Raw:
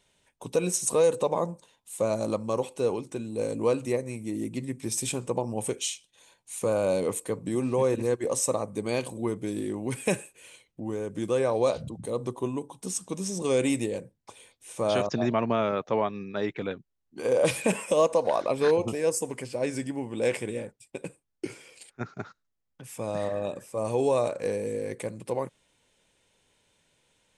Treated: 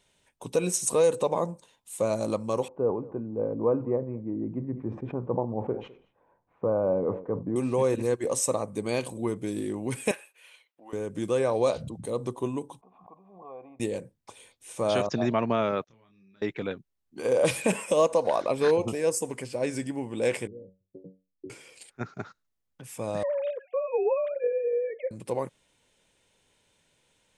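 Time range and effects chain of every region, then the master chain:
0:02.68–0:07.56: low-pass filter 1,200 Hz 24 dB per octave + single-tap delay 206 ms −22 dB + level that may fall only so fast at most 130 dB per second
0:10.11–0:10.93: high-pass filter 880 Hz + parametric band 7,600 Hz −14 dB 0.95 octaves
0:12.81–0:13.80: formant resonators in series a + background raised ahead of every attack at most 63 dB per second
0:15.84–0:16.42: guitar amp tone stack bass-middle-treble 6-0-2 + downward compressor 5 to 1, threshold −58 dBFS + double-tracking delay 26 ms −4 dB
0:20.47–0:21.50: inverse Chebyshev low-pass filter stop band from 2,100 Hz, stop band 70 dB + tuned comb filter 94 Hz, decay 0.27 s, mix 90%
0:23.23–0:25.11: three sine waves on the formant tracks + multiband upward and downward compressor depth 70%
whole clip: no processing

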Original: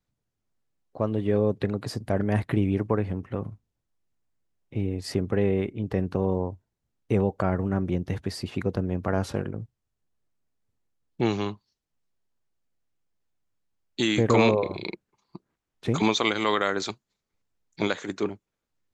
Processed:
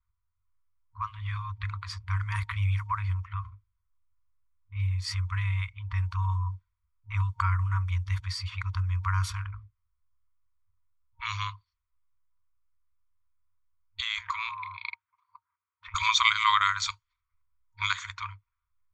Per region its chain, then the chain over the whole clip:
0:14.00–0:15.95: high-pass filter 140 Hz 24 dB per octave + downward compressor 10 to 1, threshold −24 dBFS + high-frequency loss of the air 79 metres
whole clip: brick-wall band-stop 100–930 Hz; low-pass that shuts in the quiet parts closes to 1,300 Hz, open at −29 dBFS; comb filter 0.9 ms, depth 43%; level +2.5 dB

